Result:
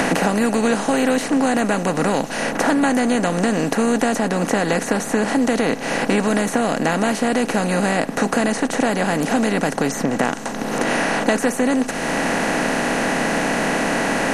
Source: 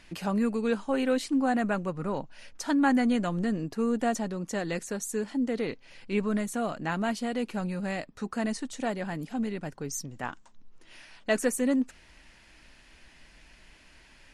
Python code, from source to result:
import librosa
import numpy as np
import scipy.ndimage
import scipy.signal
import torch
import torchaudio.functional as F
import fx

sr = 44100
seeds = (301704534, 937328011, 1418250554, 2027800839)

y = fx.bin_compress(x, sr, power=0.4)
y = fx.band_squash(y, sr, depth_pct=100)
y = F.gain(torch.from_numpy(y), 4.0).numpy()